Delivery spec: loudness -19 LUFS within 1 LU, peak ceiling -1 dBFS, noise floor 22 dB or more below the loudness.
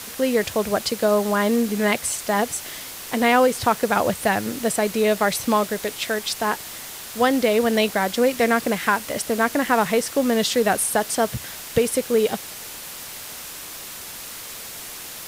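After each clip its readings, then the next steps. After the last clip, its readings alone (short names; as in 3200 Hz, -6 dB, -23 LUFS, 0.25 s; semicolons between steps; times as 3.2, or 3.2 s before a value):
noise floor -36 dBFS; noise floor target -44 dBFS; loudness -21.5 LUFS; peak -4.5 dBFS; loudness target -19.0 LUFS
-> noise print and reduce 8 dB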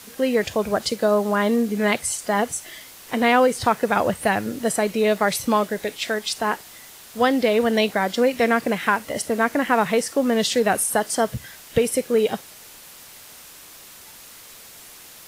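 noise floor -44 dBFS; loudness -21.5 LUFS; peak -4.5 dBFS; loudness target -19.0 LUFS
-> gain +2.5 dB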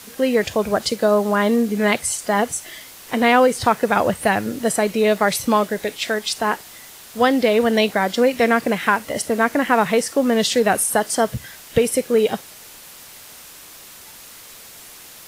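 loudness -19.0 LUFS; peak -2.0 dBFS; noise floor -42 dBFS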